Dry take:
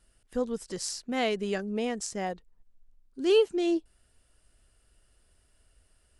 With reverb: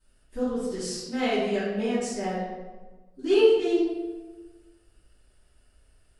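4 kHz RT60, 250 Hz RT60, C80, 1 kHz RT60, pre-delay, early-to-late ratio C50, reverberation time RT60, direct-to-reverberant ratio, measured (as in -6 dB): 0.85 s, 1.5 s, 2.5 dB, 1.2 s, 3 ms, -1.0 dB, 1.3 s, -17.0 dB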